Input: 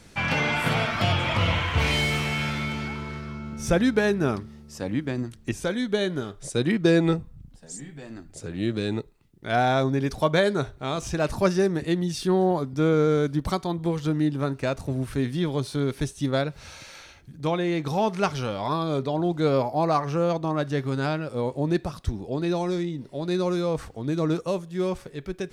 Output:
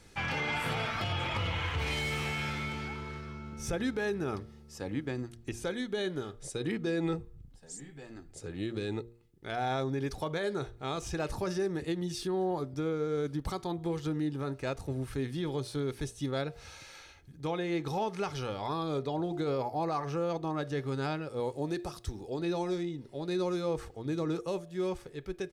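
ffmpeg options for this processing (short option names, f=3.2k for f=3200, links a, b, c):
-filter_complex "[0:a]asettb=1/sr,asplit=3[a][b][c];[a]atrim=end=21.404[d];[b]atrim=start=21.4:end=22.39,asetpts=PTS-STARTPTS,afade=t=in:d=0.004:c=qsin,afade=t=out:st=0.986:d=0.004:c=qsin,bass=f=250:g=-4,treble=f=4k:g=6[e];[c]atrim=start=22.386[f];[d][e]acrossfade=d=0.004:c1=hsin:c2=qsin[g];[g][f]acrossfade=d=0.004:c1=qsin:c2=hsin,aecho=1:1:2.4:0.32,alimiter=limit=-17.5dB:level=0:latency=1:release=44,bandreject=f=116.9:t=h:w=4,bandreject=f=233.8:t=h:w=4,bandreject=f=350.7:t=h:w=4,bandreject=f=467.6:t=h:w=4,bandreject=f=584.5:t=h:w=4,bandreject=f=701.4:t=h:w=4,volume=-6.5dB"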